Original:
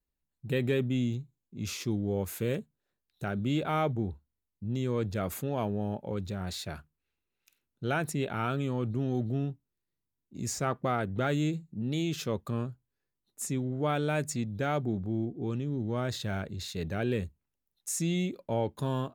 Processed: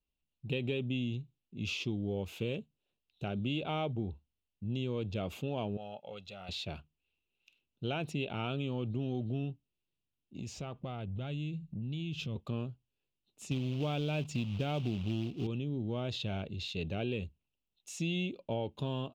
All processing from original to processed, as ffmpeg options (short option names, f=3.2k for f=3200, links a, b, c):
-filter_complex "[0:a]asettb=1/sr,asplit=3[a][b][c];[a]atrim=end=5.774[d];[b]atrim=start=5.77:end=6.49,asetpts=PTS-STARTPTS,afade=t=in:d=0.004:c=qsin,afade=t=out:st=0.716:d=0.004:c=qsin,highpass=f=1.1k:p=1,aecho=1:1:1.5:0.59,atrim=end_sample=31752[e];[c]atrim=start=6.486[f];[d][e]acrossfade=d=0.004:c1=hsin:c2=qsin[g];[g][f]acrossfade=d=0.004:c1=qsin:c2=hsin,asettb=1/sr,asplit=3[h][i][j];[h]atrim=end=10.384[k];[i]atrim=start=10.38:end=12.36,asetpts=PTS-STARTPTS,afade=t=in:d=0.004:c=qsin,afade=t=out:st=1.976:d=0.004:c=qsin,asubboost=boost=9.5:cutoff=190,acompressor=threshold=-35dB:ratio=4:attack=3.2:release=140:knee=1:detection=peak[l];[j]atrim=start=12.356[m];[k][l]acrossfade=d=0.004:c1=hsin:c2=qsin[n];[n][m]acrossfade=d=0.004:c1=qsin:c2=hsin,asettb=1/sr,asplit=3[o][p][q];[o]atrim=end=13.514[r];[p]atrim=start=13.51:end=15.47,asetpts=PTS-STARTPTS,afade=t=in:d=0.004:c=qsin,afade=t=out:st=1.956:d=0.004:c=qsin,bass=f=250:g=6,treble=f=4k:g=0,acrusher=bits=4:mode=log:mix=0:aa=0.000001[s];[q]atrim=start=15.466[t];[r][s]acrossfade=d=0.004:c1=hsin:c2=qsin[u];[u][t]acrossfade=d=0.004:c1=qsin:c2=hsin,firequalizer=gain_entry='entry(710,0);entry(1800,-12);entry(2700,11);entry(4300,-1);entry(9400,-17)':delay=0.05:min_phase=1,acompressor=threshold=-28dB:ratio=6,volume=-2dB"